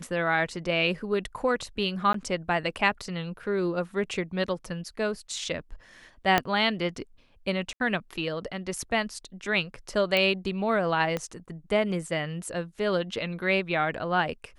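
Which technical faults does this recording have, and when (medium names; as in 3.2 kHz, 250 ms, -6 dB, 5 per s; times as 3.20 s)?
2.13–2.14 s: dropout 13 ms
6.38 s: pop -7 dBFS
7.73–7.80 s: dropout 71 ms
10.17 s: pop -12 dBFS
11.17 s: pop -16 dBFS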